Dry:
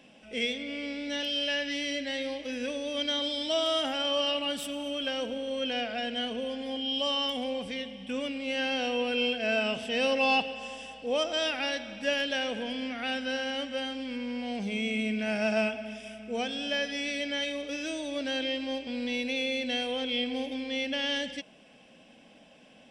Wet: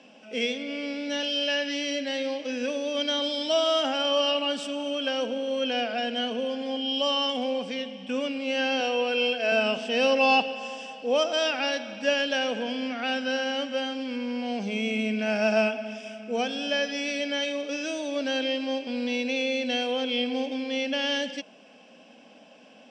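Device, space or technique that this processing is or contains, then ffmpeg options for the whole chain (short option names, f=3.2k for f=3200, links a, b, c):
television speaker: -filter_complex "[0:a]asettb=1/sr,asplit=3[a][b][c];[a]atrim=end=8.804[d];[b]atrim=start=8.8:end=9.52,asetpts=PTS-STARTPTS,afade=t=in:d=0.004:c=qsin,afade=t=out:st=0.716:d=0.004:c=qsin,highpass=320[e];[c]atrim=start=9.516[f];[d][e]acrossfade=d=0.004:c1=hsin:c2=qsin[g];[g][f]acrossfade=d=0.004:c1=qsin:c2=hsin,highpass=f=210:w=0.5412,highpass=f=210:w=1.3066,equalizer=f=340:t=q:w=4:g=-5,equalizer=f=2k:t=q:w=4:g=-7,equalizer=f=3.6k:t=q:w=4:g=-6,lowpass=f=6.8k:w=0.5412,lowpass=f=6.8k:w=1.3066,volume=5.5dB"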